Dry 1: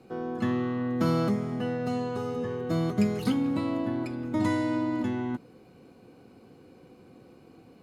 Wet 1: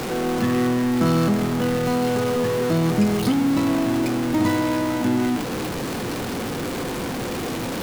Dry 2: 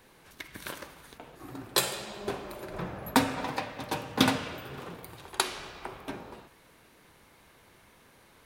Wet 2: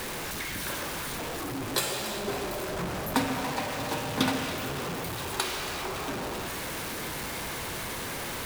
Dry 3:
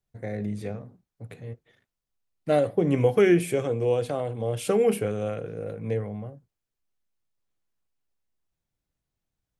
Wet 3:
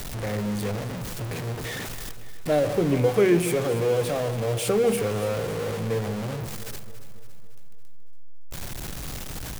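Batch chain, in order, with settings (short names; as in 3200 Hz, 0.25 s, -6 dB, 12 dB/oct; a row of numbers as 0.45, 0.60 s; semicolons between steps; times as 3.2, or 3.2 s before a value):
zero-crossing step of -25 dBFS; on a send: echo with dull and thin repeats by turns 0.14 s, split 980 Hz, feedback 73%, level -11 dB; on the sum: normalise peaks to -9 dBFS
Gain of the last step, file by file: +3.0, -4.5, -2.0 dB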